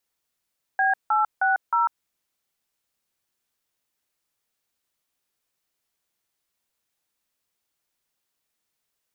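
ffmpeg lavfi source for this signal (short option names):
-f lavfi -i "aevalsrc='0.0944*clip(min(mod(t,0.312),0.147-mod(t,0.312))/0.002,0,1)*(eq(floor(t/0.312),0)*(sin(2*PI*770*mod(t,0.312))+sin(2*PI*1633*mod(t,0.312)))+eq(floor(t/0.312),1)*(sin(2*PI*852*mod(t,0.312))+sin(2*PI*1336*mod(t,0.312)))+eq(floor(t/0.312),2)*(sin(2*PI*770*mod(t,0.312))+sin(2*PI*1477*mod(t,0.312)))+eq(floor(t/0.312),3)*(sin(2*PI*941*mod(t,0.312))+sin(2*PI*1336*mod(t,0.312))))':d=1.248:s=44100"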